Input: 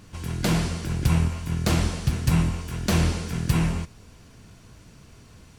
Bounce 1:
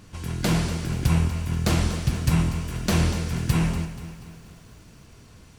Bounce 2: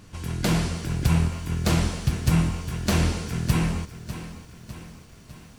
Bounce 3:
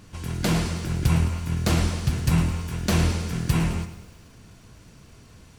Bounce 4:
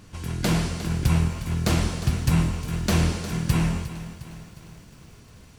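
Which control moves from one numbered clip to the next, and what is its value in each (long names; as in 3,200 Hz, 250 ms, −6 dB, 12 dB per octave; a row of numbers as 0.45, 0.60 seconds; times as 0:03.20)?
feedback echo at a low word length, delay time: 241, 603, 107, 357 milliseconds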